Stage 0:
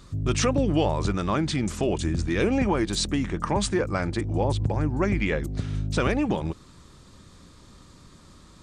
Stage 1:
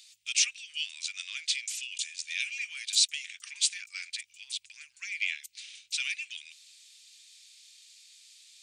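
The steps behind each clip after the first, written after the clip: elliptic high-pass 2.4 kHz, stop band 70 dB; trim +4.5 dB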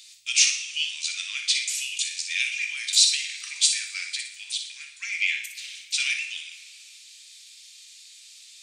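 flutter echo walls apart 10.3 m, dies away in 0.4 s; two-slope reverb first 0.49 s, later 2.7 s, from -17 dB, DRR 4 dB; trim +5.5 dB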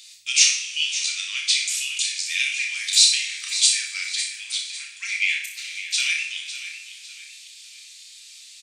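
doubling 31 ms -5 dB; feedback delay 553 ms, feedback 35%, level -12 dB; trim +2 dB

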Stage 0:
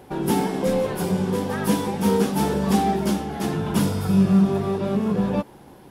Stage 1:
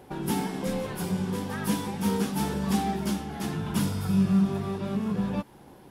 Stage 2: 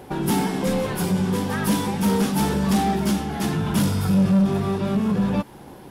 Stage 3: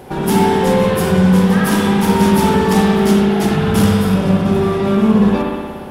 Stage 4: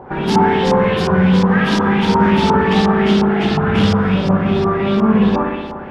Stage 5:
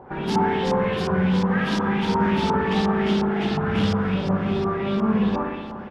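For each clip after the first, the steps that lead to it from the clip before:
dynamic bell 500 Hz, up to -7 dB, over -36 dBFS, Q 0.9; trim -4 dB
saturation -21.5 dBFS, distortion -14 dB; trim +8.5 dB
spring tank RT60 1.7 s, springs 59 ms, chirp 50 ms, DRR -3.5 dB; trim +4.5 dB
LFO low-pass saw up 2.8 Hz 970–5500 Hz; trim -1.5 dB
feedback delay 646 ms, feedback 36%, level -19.5 dB; trim -8 dB

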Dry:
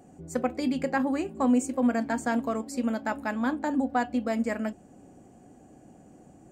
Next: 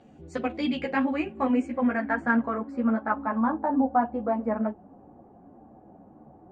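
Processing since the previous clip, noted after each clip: low-pass sweep 3.5 kHz -> 1 kHz, 0.45–3.60 s; three-phase chorus; trim +3 dB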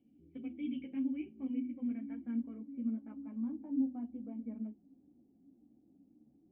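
cascade formant filter i; hum notches 50/100/150/200/250 Hz; trim -7 dB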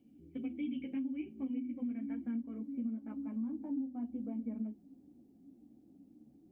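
compression 12:1, threshold -39 dBFS, peak gain reduction 12.5 dB; trim +5 dB

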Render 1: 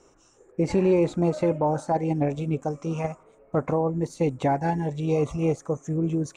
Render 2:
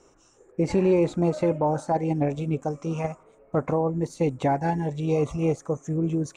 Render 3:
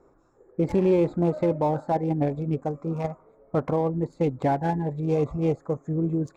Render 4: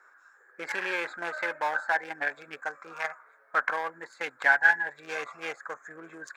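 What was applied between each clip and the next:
no audible change
local Wiener filter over 15 samples
resonant high-pass 1.6 kHz, resonance Q 9.5; trim +6 dB

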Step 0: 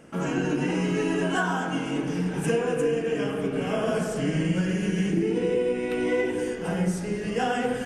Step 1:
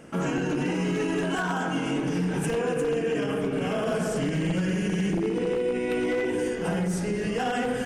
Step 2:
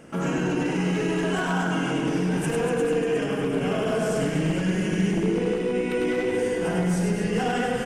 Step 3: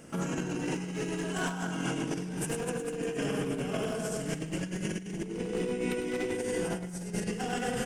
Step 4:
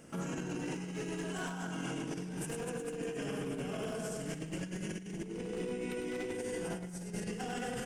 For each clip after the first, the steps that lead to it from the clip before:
one-sided wavefolder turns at -19 dBFS; peak limiter -22 dBFS, peak gain reduction 7.5 dB; trim +3 dB
reverse bouncing-ball echo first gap 100 ms, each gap 1.4×, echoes 5
tone controls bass +3 dB, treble +9 dB; compressor with a negative ratio -25 dBFS, ratio -0.5; trim -7.5 dB
peak limiter -24.5 dBFS, peak gain reduction 5 dB; trim -4.5 dB

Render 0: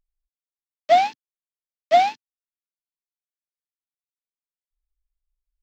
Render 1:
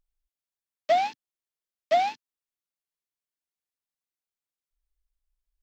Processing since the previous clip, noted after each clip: compression 3:1, threshold -21 dBFS, peak gain reduction 8 dB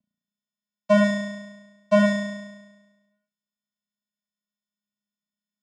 vocoder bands 4, square 207 Hz; on a send: flutter echo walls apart 5.9 m, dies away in 1.2 s; on the sum: trim +4.5 dB

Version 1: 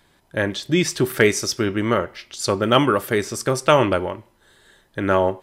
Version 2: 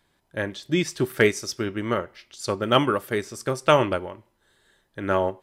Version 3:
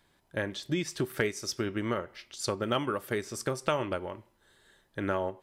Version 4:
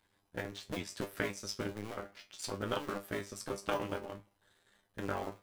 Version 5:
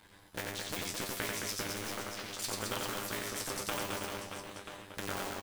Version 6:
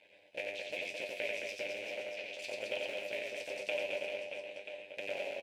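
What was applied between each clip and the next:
upward expansion 1.5:1, over -26 dBFS; trim -2 dB
compression 3:1, threshold -29 dBFS, peak gain reduction 12.5 dB
cycle switcher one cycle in 2, muted; feedback comb 100 Hz, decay 0.18 s, harmonics all, mix 90%; trim +3 dB
reverse bouncing-ball echo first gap 90 ms, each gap 1.4×, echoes 5; spectrum-flattening compressor 2:1
two resonant band-passes 1.2 kHz, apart 2.1 oct; trim +9 dB

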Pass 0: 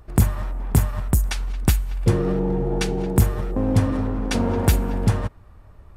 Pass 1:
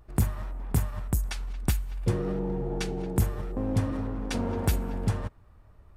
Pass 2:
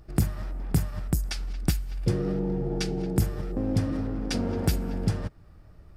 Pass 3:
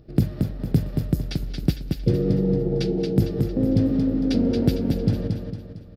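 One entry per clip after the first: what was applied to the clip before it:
vibrato 0.56 Hz 26 cents; trim -8 dB
graphic EQ with 31 bands 160 Hz +8 dB, 315 Hz +5 dB, 1 kHz -8 dB, 5 kHz +9 dB; in parallel at -1.5 dB: compression, threshold -34 dBFS, peak gain reduction 16.5 dB; on the sum: trim -2 dB
graphic EQ 125/250/500/1000/4000/8000 Hz +8/+9/+10/-6/+9/-11 dB; on a send: feedback delay 227 ms, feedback 44%, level -5 dB; on the sum: trim -4.5 dB

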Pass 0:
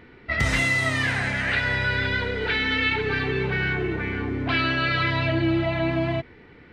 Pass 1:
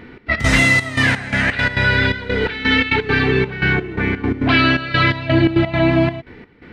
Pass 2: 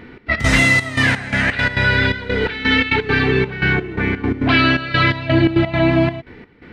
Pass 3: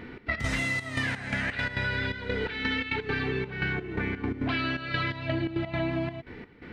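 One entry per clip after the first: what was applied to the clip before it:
trance gate "xx.x.xxxx..xx.." 170 bpm -12 dB; peaking EQ 230 Hz +4.5 dB 0.75 oct; trim +8.5 dB
no audible change
compression 5:1, threshold -24 dBFS, peak gain reduction 13 dB; trim -3.5 dB

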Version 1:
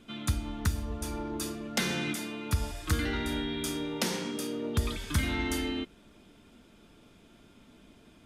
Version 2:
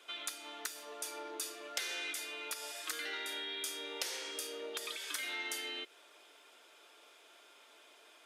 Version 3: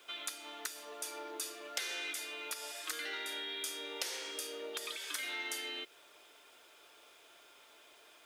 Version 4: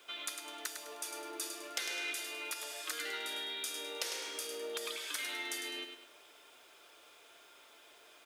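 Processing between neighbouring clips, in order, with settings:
Bessel high-pass 700 Hz, order 8; dynamic bell 980 Hz, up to -7 dB, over -55 dBFS, Q 1.3; compression 2.5:1, threshold -43 dBFS, peak gain reduction 10.5 dB; trim +3.5 dB
word length cut 12-bit, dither triangular
feedback delay 103 ms, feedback 37%, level -7 dB

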